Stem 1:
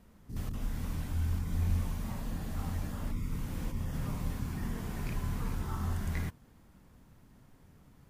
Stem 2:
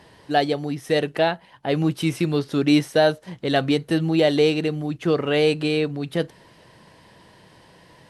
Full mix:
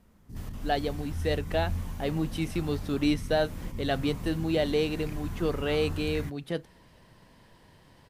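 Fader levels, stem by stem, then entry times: -1.5, -8.5 dB; 0.00, 0.35 s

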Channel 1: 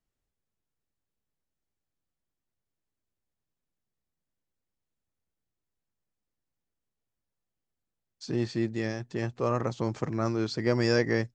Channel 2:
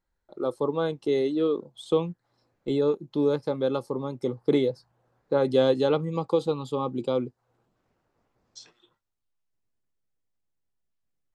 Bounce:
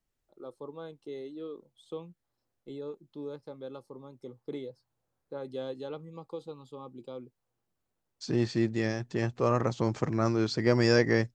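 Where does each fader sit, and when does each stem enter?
+1.5, -16.0 dB; 0.00, 0.00 s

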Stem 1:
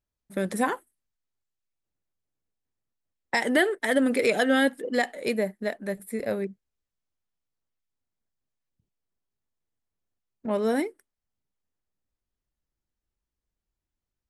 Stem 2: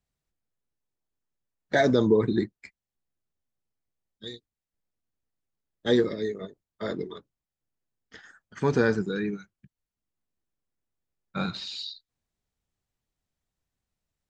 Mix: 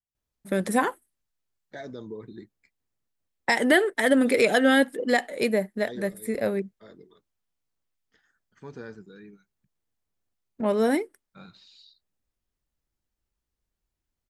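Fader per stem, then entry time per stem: +2.5, -18.0 dB; 0.15, 0.00 s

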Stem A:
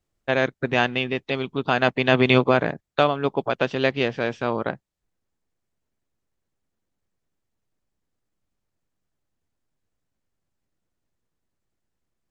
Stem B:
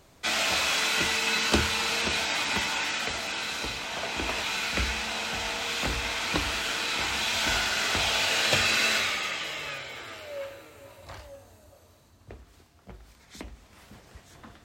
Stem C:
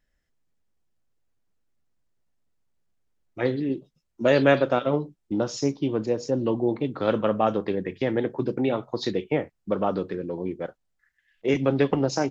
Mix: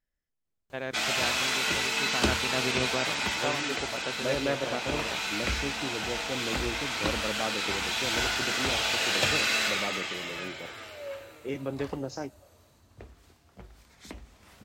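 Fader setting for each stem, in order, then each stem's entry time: -14.0, -2.0, -11.5 dB; 0.45, 0.70, 0.00 s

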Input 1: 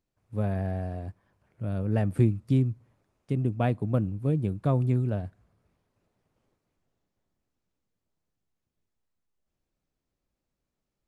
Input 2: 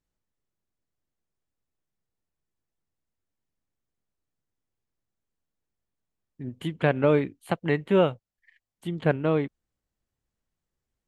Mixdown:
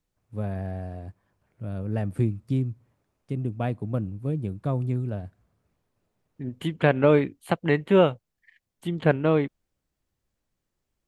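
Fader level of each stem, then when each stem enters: -2.0, +2.5 dB; 0.00, 0.00 s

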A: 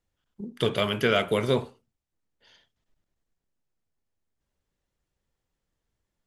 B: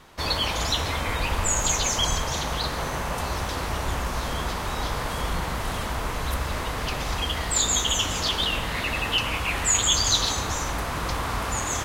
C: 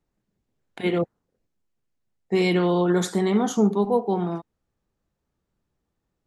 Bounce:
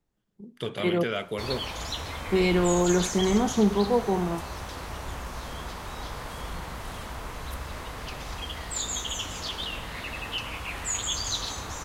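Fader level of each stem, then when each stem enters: -7.5, -8.5, -2.0 dB; 0.00, 1.20, 0.00 s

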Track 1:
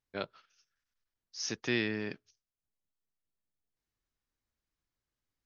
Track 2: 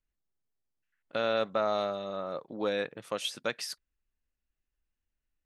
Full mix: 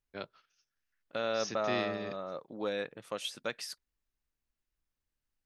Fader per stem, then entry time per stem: -4.5, -4.0 dB; 0.00, 0.00 s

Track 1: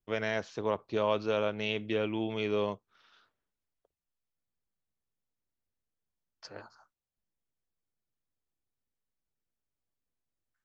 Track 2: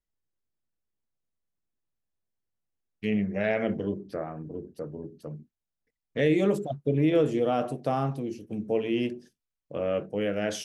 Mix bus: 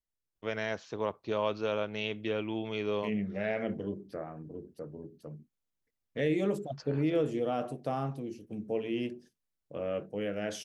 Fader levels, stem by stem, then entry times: -2.0, -6.0 dB; 0.35, 0.00 s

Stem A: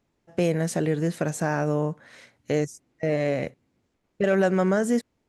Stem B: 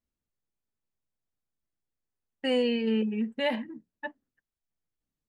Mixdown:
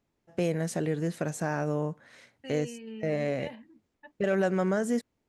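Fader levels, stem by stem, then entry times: -5.0, -15.0 dB; 0.00, 0.00 s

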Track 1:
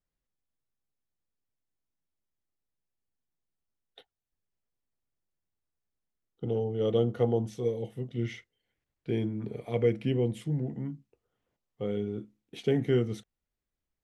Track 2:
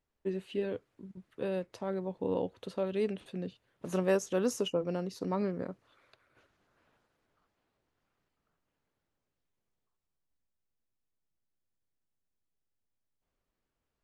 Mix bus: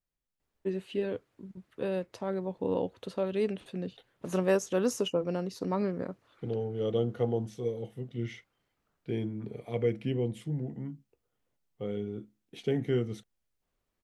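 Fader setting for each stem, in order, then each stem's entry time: -3.0, +2.0 dB; 0.00, 0.40 s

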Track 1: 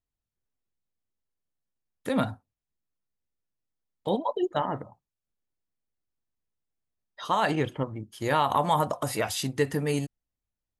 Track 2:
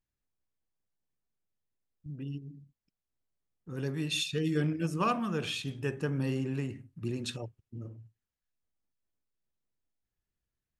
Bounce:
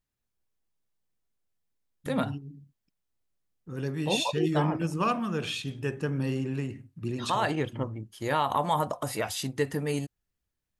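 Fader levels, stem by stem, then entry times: -2.5, +2.0 dB; 0.00, 0.00 s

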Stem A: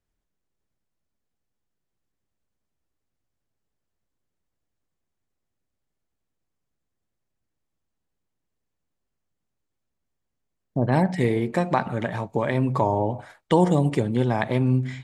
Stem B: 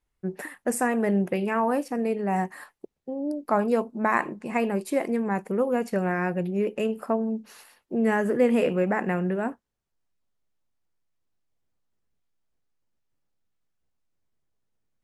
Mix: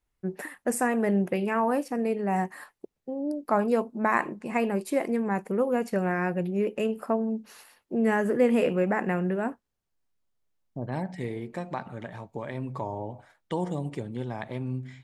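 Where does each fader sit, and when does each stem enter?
-11.5, -1.0 dB; 0.00, 0.00 s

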